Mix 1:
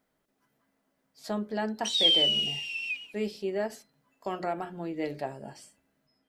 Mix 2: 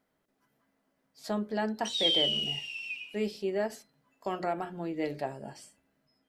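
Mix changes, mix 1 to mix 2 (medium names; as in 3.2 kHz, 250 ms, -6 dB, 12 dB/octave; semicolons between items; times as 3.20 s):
background -8.5 dB; reverb: on, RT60 0.45 s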